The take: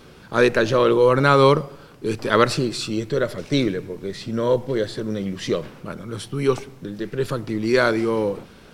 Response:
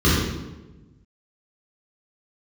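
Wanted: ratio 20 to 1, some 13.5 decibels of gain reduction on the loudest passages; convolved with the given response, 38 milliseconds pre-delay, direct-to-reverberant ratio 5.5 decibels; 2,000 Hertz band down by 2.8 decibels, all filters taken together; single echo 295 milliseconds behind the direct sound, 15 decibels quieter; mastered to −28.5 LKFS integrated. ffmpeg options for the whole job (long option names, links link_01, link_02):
-filter_complex "[0:a]equalizer=frequency=2000:width_type=o:gain=-4,acompressor=threshold=-24dB:ratio=20,aecho=1:1:295:0.178,asplit=2[link_01][link_02];[1:a]atrim=start_sample=2205,adelay=38[link_03];[link_02][link_03]afir=irnorm=-1:irlink=0,volume=-26.5dB[link_04];[link_01][link_04]amix=inputs=2:normalize=0,volume=-3.5dB"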